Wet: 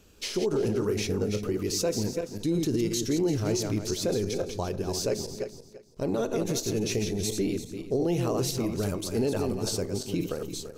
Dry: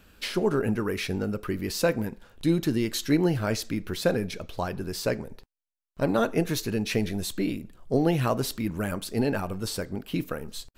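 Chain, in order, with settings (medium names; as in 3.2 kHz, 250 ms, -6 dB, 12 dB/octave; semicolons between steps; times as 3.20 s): backward echo that repeats 170 ms, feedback 44%, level -6 dB; fifteen-band graphic EQ 100 Hz +5 dB, 400 Hz +8 dB, 1.6 kHz -7 dB, 6.3 kHz +11 dB; peak limiter -15 dBFS, peak gain reduction 8.5 dB; trim -3.5 dB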